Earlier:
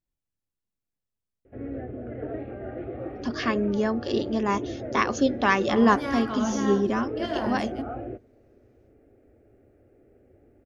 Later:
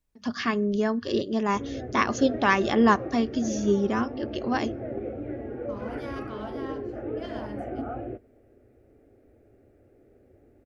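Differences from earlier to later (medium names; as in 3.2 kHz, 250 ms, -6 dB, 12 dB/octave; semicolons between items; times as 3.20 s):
first voice: entry -3.00 s; second voice -8.5 dB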